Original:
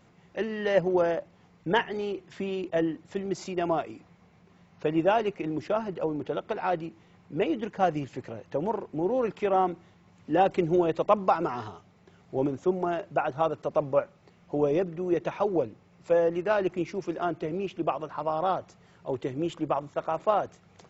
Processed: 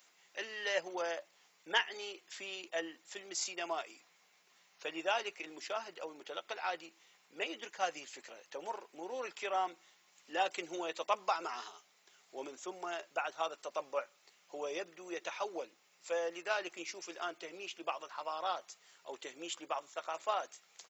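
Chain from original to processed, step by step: high-pass 290 Hz 12 dB/octave; differentiator; doubling 12 ms -12 dB; trim +8.5 dB

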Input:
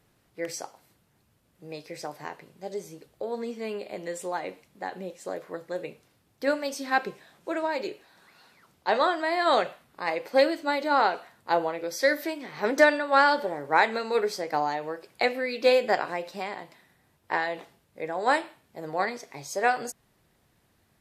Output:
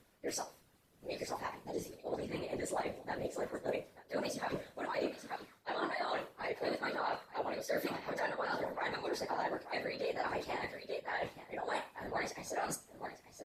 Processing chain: plain phase-vocoder stretch 0.64×; on a send: delay 885 ms -17.5 dB; on the sum: peak limiter -20.5 dBFS, peak gain reduction 11 dB; reverse; compression 6:1, threshold -38 dBFS, peak gain reduction 13 dB; reverse; hum notches 50/100/150/200/250 Hz; feedback comb 180 Hz, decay 0.34 s, harmonics all, mix 70%; whisper effect; trim +11 dB

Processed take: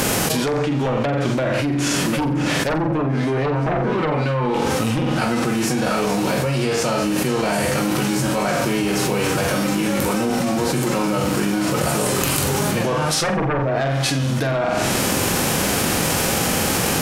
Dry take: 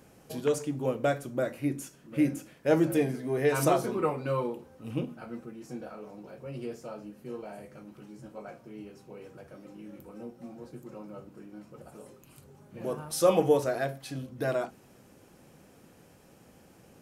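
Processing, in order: formants flattened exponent 0.6; low-pass that closes with the level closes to 760 Hz, closed at -21.5 dBFS; sine folder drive 11 dB, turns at -11.5 dBFS; on a send: flutter echo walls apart 7.7 m, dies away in 0.39 s; on the sum: level flattener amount 100%; trim -7.5 dB

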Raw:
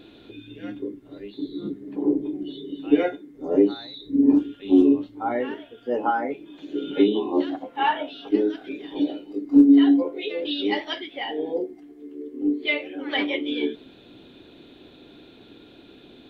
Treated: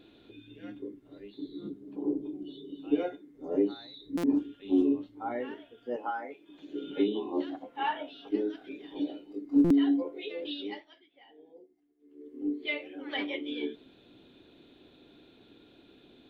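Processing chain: 1.69–3.11 s: peaking EQ 1.9 kHz -13 dB 0.36 oct; 5.96–6.49 s: high-pass 680 Hz 6 dB/octave; 10.49–12.38 s: dip -18.5 dB, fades 0.39 s; buffer glitch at 4.17/9.64 s, samples 256, times 10; trim -9 dB

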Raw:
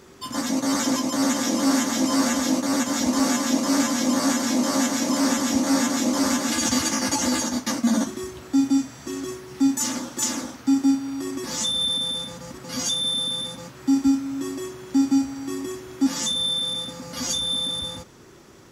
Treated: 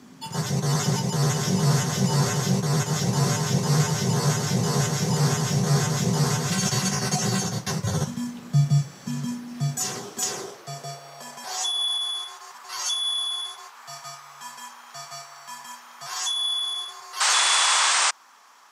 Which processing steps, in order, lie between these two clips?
frequency shift -130 Hz; painted sound noise, 17.20–18.11 s, 250–9100 Hz -20 dBFS; high-pass sweep 180 Hz -> 1 kHz, 9.26–12.06 s; trim -2 dB

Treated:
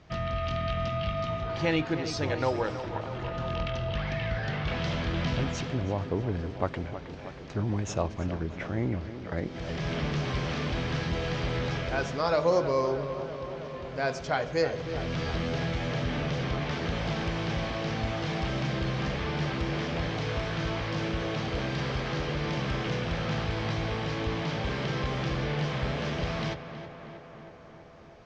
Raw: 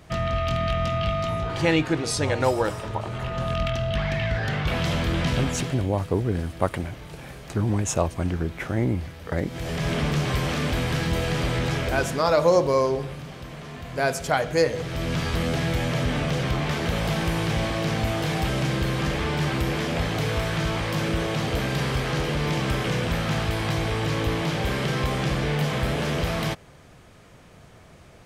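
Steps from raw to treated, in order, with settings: steep low-pass 6.1 kHz 36 dB/octave; on a send: tape echo 320 ms, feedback 79%, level -10 dB, low-pass 2.7 kHz; on the sum: trim -6 dB

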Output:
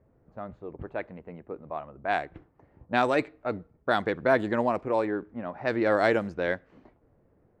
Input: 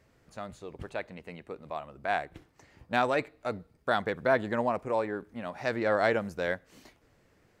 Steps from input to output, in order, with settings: level-controlled noise filter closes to 760 Hz, open at -22 dBFS; dynamic bell 320 Hz, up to +6 dB, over -48 dBFS, Q 2.7; trim +2 dB

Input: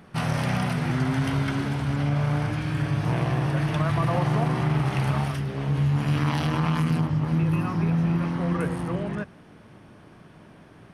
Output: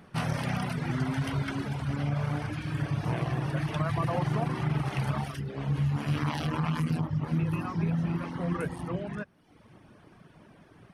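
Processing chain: reverb removal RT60 0.91 s; trim -3 dB

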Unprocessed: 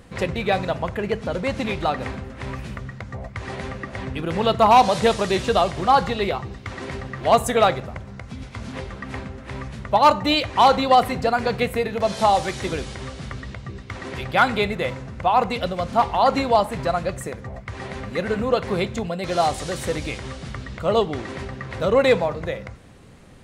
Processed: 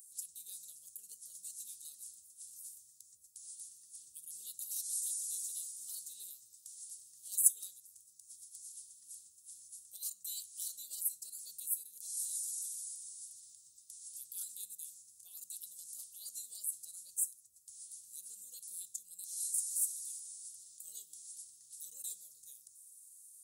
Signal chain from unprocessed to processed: inverse Chebyshev high-pass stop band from 2.3 kHz, stop band 70 dB; in parallel at -1 dB: compression, threshold -60 dBFS, peak gain reduction 28 dB; on the sum: trim +8.5 dB

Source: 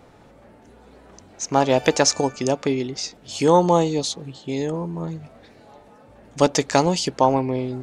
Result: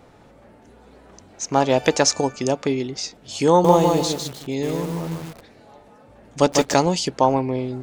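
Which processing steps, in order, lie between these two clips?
3.49–6.74 s: bit-crushed delay 152 ms, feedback 35%, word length 6-bit, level -3 dB

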